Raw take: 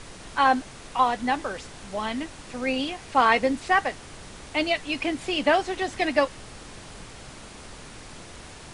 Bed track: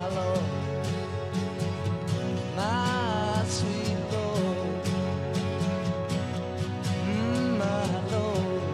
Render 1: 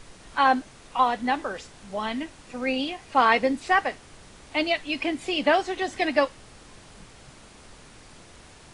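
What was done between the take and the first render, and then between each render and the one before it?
noise print and reduce 6 dB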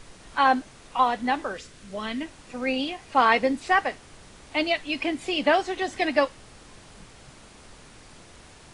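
1.54–2.21 s: peaking EQ 830 Hz -10 dB 0.54 oct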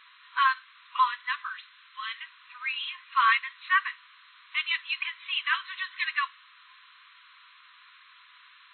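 FFT band-pass 970–4200 Hz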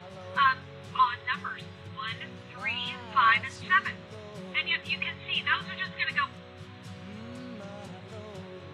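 add bed track -15.5 dB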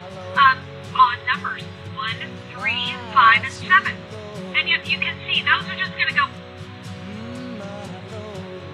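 trim +9.5 dB; peak limiter -2 dBFS, peak gain reduction 1.5 dB

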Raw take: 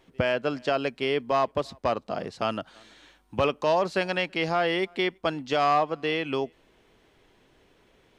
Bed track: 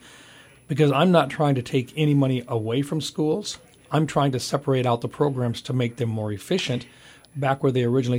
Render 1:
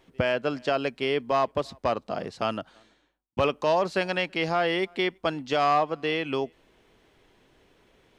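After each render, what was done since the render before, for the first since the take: 2.45–3.37 s: studio fade out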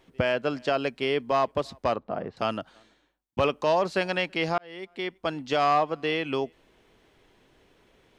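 1.96–2.37 s: low-pass 1.7 kHz; 4.58–5.47 s: fade in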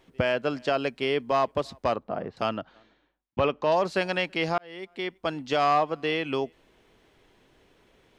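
2.49–3.72 s: Gaussian low-pass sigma 1.8 samples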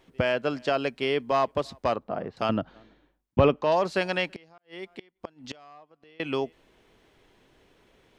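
2.49–3.56 s: bass shelf 480 Hz +10 dB; 4.28–6.20 s: inverted gate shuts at -24 dBFS, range -28 dB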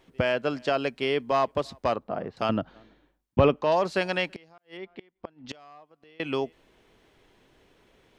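4.77–5.49 s: distance through air 220 m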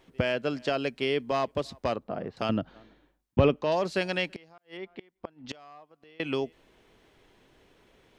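dynamic bell 1 kHz, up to -6 dB, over -37 dBFS, Q 0.88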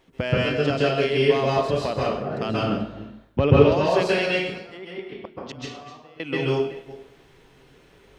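chunks repeated in reverse 194 ms, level -13 dB; plate-style reverb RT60 0.61 s, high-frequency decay 0.85×, pre-delay 120 ms, DRR -6 dB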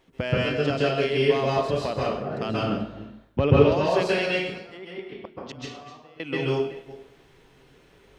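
trim -2 dB

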